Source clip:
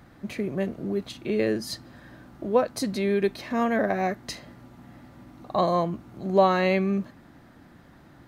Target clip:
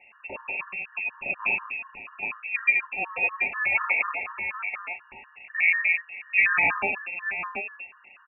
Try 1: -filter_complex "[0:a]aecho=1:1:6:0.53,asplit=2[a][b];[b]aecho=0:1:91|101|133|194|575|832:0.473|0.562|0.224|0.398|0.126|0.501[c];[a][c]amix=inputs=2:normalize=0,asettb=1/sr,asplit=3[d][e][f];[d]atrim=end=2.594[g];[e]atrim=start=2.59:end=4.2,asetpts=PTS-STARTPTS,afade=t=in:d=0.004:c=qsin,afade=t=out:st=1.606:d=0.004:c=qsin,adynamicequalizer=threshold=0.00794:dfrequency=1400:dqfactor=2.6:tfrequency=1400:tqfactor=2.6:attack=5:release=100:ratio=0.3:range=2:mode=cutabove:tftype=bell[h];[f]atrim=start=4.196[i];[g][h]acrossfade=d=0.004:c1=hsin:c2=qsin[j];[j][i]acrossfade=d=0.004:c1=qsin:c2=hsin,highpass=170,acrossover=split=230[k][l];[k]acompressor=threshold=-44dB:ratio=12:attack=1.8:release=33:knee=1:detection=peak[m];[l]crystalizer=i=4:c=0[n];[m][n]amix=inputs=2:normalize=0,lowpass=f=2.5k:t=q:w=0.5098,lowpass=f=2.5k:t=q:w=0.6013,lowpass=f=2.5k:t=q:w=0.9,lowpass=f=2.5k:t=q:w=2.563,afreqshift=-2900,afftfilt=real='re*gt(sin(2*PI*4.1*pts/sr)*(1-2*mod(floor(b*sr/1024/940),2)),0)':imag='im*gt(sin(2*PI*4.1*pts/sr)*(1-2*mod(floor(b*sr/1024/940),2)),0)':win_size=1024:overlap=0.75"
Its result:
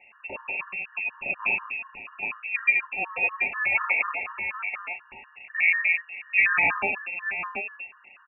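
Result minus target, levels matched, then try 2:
compressor: peak gain reduction -7.5 dB
-filter_complex "[0:a]aecho=1:1:6:0.53,asplit=2[a][b];[b]aecho=0:1:91|101|133|194|575|832:0.473|0.562|0.224|0.398|0.126|0.501[c];[a][c]amix=inputs=2:normalize=0,asettb=1/sr,asplit=3[d][e][f];[d]atrim=end=2.594[g];[e]atrim=start=2.59:end=4.2,asetpts=PTS-STARTPTS,afade=t=in:d=0.004:c=qsin,afade=t=out:st=1.606:d=0.004:c=qsin,adynamicequalizer=threshold=0.00794:dfrequency=1400:dqfactor=2.6:tfrequency=1400:tqfactor=2.6:attack=5:release=100:ratio=0.3:range=2:mode=cutabove:tftype=bell[h];[f]atrim=start=4.196[i];[g][h]acrossfade=d=0.004:c1=hsin:c2=qsin[j];[j][i]acrossfade=d=0.004:c1=qsin:c2=hsin,highpass=170,acrossover=split=230[k][l];[k]acompressor=threshold=-52dB:ratio=12:attack=1.8:release=33:knee=1:detection=peak[m];[l]crystalizer=i=4:c=0[n];[m][n]amix=inputs=2:normalize=0,lowpass=f=2.5k:t=q:w=0.5098,lowpass=f=2.5k:t=q:w=0.6013,lowpass=f=2.5k:t=q:w=0.9,lowpass=f=2.5k:t=q:w=2.563,afreqshift=-2900,afftfilt=real='re*gt(sin(2*PI*4.1*pts/sr)*(1-2*mod(floor(b*sr/1024/940),2)),0)':imag='im*gt(sin(2*PI*4.1*pts/sr)*(1-2*mod(floor(b*sr/1024/940),2)),0)':win_size=1024:overlap=0.75"

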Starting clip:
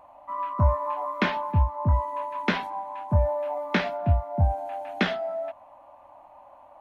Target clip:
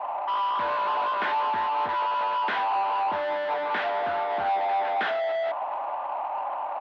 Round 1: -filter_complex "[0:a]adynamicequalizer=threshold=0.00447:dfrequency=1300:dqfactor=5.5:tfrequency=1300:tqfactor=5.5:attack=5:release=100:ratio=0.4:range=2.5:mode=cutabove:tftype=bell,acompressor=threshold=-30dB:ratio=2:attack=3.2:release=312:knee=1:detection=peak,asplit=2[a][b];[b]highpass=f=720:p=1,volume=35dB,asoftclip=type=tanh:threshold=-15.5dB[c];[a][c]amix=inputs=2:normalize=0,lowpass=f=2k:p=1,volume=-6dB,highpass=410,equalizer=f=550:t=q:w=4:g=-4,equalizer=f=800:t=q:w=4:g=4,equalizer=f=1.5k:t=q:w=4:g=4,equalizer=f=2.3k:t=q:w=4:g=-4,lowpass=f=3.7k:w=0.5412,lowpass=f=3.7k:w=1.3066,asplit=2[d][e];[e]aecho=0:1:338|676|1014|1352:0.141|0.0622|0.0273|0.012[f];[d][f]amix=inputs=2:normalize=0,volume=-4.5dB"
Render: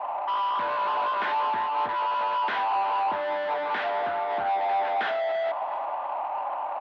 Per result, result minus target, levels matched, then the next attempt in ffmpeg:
compressor: peak gain reduction +9 dB; echo-to-direct +8.5 dB
-filter_complex "[0:a]adynamicequalizer=threshold=0.00447:dfrequency=1300:dqfactor=5.5:tfrequency=1300:tqfactor=5.5:attack=5:release=100:ratio=0.4:range=2.5:mode=cutabove:tftype=bell,asplit=2[a][b];[b]highpass=f=720:p=1,volume=35dB,asoftclip=type=tanh:threshold=-15.5dB[c];[a][c]amix=inputs=2:normalize=0,lowpass=f=2k:p=1,volume=-6dB,highpass=410,equalizer=f=550:t=q:w=4:g=-4,equalizer=f=800:t=q:w=4:g=4,equalizer=f=1.5k:t=q:w=4:g=4,equalizer=f=2.3k:t=q:w=4:g=-4,lowpass=f=3.7k:w=0.5412,lowpass=f=3.7k:w=1.3066,asplit=2[d][e];[e]aecho=0:1:338|676|1014|1352:0.141|0.0622|0.0273|0.012[f];[d][f]amix=inputs=2:normalize=0,volume=-4.5dB"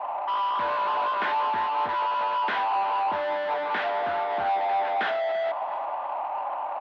echo-to-direct +8.5 dB
-filter_complex "[0:a]adynamicequalizer=threshold=0.00447:dfrequency=1300:dqfactor=5.5:tfrequency=1300:tqfactor=5.5:attack=5:release=100:ratio=0.4:range=2.5:mode=cutabove:tftype=bell,asplit=2[a][b];[b]highpass=f=720:p=1,volume=35dB,asoftclip=type=tanh:threshold=-15.5dB[c];[a][c]amix=inputs=2:normalize=0,lowpass=f=2k:p=1,volume=-6dB,highpass=410,equalizer=f=550:t=q:w=4:g=-4,equalizer=f=800:t=q:w=4:g=4,equalizer=f=1.5k:t=q:w=4:g=4,equalizer=f=2.3k:t=q:w=4:g=-4,lowpass=f=3.7k:w=0.5412,lowpass=f=3.7k:w=1.3066,asplit=2[d][e];[e]aecho=0:1:338|676|1014:0.0531|0.0234|0.0103[f];[d][f]amix=inputs=2:normalize=0,volume=-4.5dB"

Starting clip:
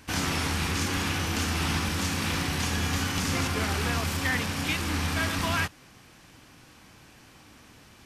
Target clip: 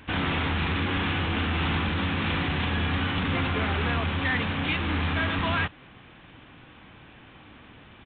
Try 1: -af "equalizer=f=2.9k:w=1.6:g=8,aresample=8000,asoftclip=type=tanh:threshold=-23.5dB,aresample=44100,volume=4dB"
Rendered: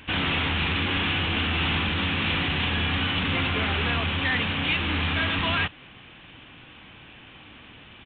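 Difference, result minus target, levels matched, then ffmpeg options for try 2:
4000 Hz band +4.0 dB
-af "aresample=8000,asoftclip=type=tanh:threshold=-23.5dB,aresample=44100,volume=4dB"

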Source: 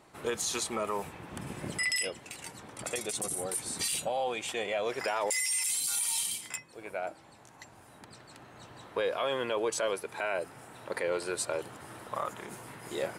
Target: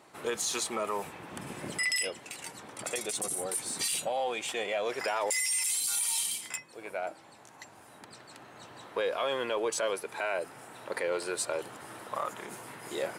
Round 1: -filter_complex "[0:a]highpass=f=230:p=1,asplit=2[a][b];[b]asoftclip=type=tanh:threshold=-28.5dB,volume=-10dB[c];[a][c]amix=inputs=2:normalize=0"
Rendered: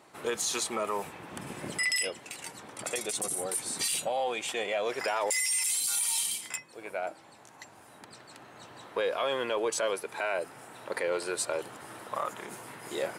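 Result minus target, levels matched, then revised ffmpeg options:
soft clip: distortion -9 dB
-filter_complex "[0:a]highpass=f=230:p=1,asplit=2[a][b];[b]asoftclip=type=tanh:threshold=-39.5dB,volume=-10dB[c];[a][c]amix=inputs=2:normalize=0"

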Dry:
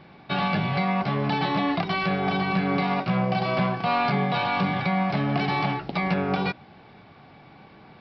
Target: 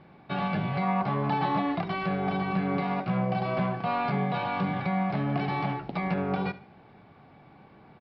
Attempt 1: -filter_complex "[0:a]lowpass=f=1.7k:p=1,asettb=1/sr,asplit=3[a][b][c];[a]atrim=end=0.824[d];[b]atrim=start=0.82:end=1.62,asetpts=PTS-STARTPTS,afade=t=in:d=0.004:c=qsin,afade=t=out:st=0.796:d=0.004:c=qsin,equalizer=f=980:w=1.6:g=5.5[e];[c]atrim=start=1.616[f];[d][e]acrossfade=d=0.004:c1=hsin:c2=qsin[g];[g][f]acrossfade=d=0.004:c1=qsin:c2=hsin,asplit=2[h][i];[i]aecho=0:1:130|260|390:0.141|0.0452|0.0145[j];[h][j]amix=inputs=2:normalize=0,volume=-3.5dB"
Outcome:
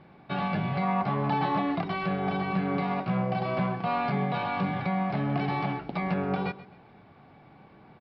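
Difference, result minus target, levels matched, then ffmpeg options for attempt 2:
echo 57 ms late
-filter_complex "[0:a]lowpass=f=1.7k:p=1,asettb=1/sr,asplit=3[a][b][c];[a]atrim=end=0.824[d];[b]atrim=start=0.82:end=1.62,asetpts=PTS-STARTPTS,afade=t=in:d=0.004:c=qsin,afade=t=out:st=0.796:d=0.004:c=qsin,equalizer=f=980:w=1.6:g=5.5[e];[c]atrim=start=1.616[f];[d][e]acrossfade=d=0.004:c1=hsin:c2=qsin[g];[g][f]acrossfade=d=0.004:c1=qsin:c2=hsin,asplit=2[h][i];[i]aecho=0:1:73|146|219:0.141|0.0452|0.0145[j];[h][j]amix=inputs=2:normalize=0,volume=-3.5dB"

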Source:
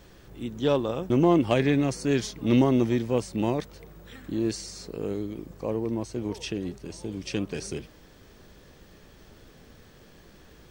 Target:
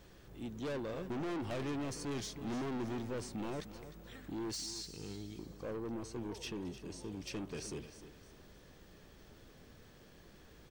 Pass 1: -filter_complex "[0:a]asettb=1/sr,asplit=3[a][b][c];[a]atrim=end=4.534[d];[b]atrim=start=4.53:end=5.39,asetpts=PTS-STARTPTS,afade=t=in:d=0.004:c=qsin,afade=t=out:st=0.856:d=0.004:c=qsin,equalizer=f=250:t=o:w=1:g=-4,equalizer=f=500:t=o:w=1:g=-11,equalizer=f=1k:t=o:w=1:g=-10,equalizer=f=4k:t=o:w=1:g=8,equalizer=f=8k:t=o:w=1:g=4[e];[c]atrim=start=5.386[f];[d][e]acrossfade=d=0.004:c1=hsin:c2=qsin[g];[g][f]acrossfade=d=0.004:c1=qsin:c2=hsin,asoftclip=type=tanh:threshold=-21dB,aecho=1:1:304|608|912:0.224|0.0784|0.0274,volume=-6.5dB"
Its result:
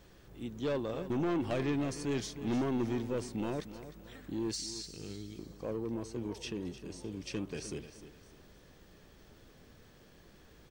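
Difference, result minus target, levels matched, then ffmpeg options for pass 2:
soft clip: distortion -6 dB
-filter_complex "[0:a]asettb=1/sr,asplit=3[a][b][c];[a]atrim=end=4.534[d];[b]atrim=start=4.53:end=5.39,asetpts=PTS-STARTPTS,afade=t=in:d=0.004:c=qsin,afade=t=out:st=0.856:d=0.004:c=qsin,equalizer=f=250:t=o:w=1:g=-4,equalizer=f=500:t=o:w=1:g=-11,equalizer=f=1k:t=o:w=1:g=-10,equalizer=f=4k:t=o:w=1:g=8,equalizer=f=8k:t=o:w=1:g=4[e];[c]atrim=start=5.386[f];[d][e]acrossfade=d=0.004:c1=hsin:c2=qsin[g];[g][f]acrossfade=d=0.004:c1=qsin:c2=hsin,asoftclip=type=tanh:threshold=-30dB,aecho=1:1:304|608|912:0.224|0.0784|0.0274,volume=-6.5dB"

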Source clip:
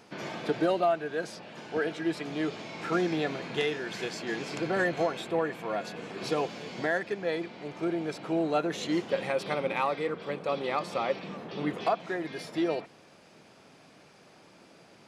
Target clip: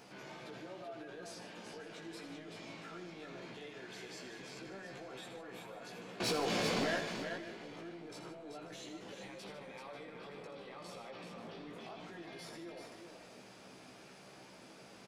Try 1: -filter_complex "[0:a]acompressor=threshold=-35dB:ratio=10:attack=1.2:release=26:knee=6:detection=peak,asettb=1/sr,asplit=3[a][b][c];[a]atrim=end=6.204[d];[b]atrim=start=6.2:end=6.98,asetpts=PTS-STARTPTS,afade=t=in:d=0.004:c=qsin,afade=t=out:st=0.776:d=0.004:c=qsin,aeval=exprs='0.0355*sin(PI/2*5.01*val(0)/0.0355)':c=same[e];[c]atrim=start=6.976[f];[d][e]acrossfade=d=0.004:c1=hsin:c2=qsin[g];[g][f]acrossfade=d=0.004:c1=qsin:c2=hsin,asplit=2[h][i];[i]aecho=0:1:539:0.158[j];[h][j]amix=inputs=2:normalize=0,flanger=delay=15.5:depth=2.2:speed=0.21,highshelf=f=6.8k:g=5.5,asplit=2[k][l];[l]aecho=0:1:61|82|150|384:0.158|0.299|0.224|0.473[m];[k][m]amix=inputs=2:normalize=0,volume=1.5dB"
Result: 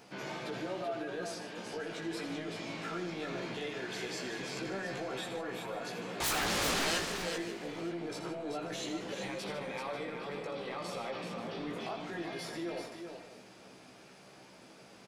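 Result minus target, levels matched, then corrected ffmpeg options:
compressor: peak gain reduction -10.5 dB
-filter_complex "[0:a]acompressor=threshold=-46.5dB:ratio=10:attack=1.2:release=26:knee=6:detection=peak,asettb=1/sr,asplit=3[a][b][c];[a]atrim=end=6.204[d];[b]atrim=start=6.2:end=6.98,asetpts=PTS-STARTPTS,afade=t=in:d=0.004:c=qsin,afade=t=out:st=0.776:d=0.004:c=qsin,aeval=exprs='0.0355*sin(PI/2*5.01*val(0)/0.0355)':c=same[e];[c]atrim=start=6.976[f];[d][e]acrossfade=d=0.004:c1=hsin:c2=qsin[g];[g][f]acrossfade=d=0.004:c1=qsin:c2=hsin,asplit=2[h][i];[i]aecho=0:1:539:0.158[j];[h][j]amix=inputs=2:normalize=0,flanger=delay=15.5:depth=2.2:speed=0.21,highshelf=f=6.8k:g=5.5,asplit=2[k][l];[l]aecho=0:1:61|82|150|384:0.158|0.299|0.224|0.473[m];[k][m]amix=inputs=2:normalize=0,volume=1.5dB"

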